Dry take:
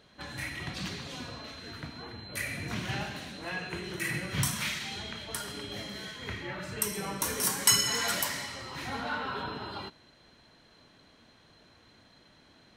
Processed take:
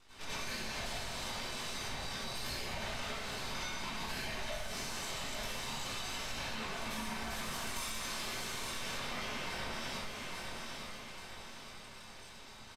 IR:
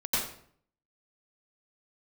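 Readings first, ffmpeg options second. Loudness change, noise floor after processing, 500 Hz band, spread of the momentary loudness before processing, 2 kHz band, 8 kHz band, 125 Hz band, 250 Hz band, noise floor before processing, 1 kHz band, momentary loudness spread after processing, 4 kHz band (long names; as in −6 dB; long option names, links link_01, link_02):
−7.0 dB, −52 dBFS, −4.0 dB, 14 LU, −4.5 dB, −10.5 dB, −9.0 dB, −6.5 dB, −60 dBFS, −3.5 dB, 9 LU, −5.0 dB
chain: -filter_complex "[0:a]highpass=85,bandreject=frequency=50:width_type=h:width=6,bandreject=frequency=100:width_type=h:width=6,bandreject=frequency=150:width_type=h:width=6,acrossover=split=4400[link_01][link_02];[link_02]acompressor=threshold=-41dB:ratio=4:attack=1:release=60[link_03];[link_01][link_03]amix=inputs=2:normalize=0,highshelf=frequency=8700:gain=-9.5,asplit=2[link_04][link_05];[link_05]adelay=21,volume=-2dB[link_06];[link_04][link_06]amix=inputs=2:normalize=0,acrossover=split=150|440|2300[link_07][link_08][link_09][link_10];[link_09]alimiter=level_in=7dB:limit=-24dB:level=0:latency=1,volume=-7dB[link_11];[link_07][link_08][link_11][link_10]amix=inputs=4:normalize=0,afreqshift=170,aeval=exprs='abs(val(0))':channel_layout=same,aecho=1:1:853|1706|2559|3412:0.224|0.101|0.0453|0.0204[link_12];[1:a]atrim=start_sample=2205[link_13];[link_12][link_13]afir=irnorm=-1:irlink=0,acompressor=threshold=-36dB:ratio=10,aresample=32000,aresample=44100"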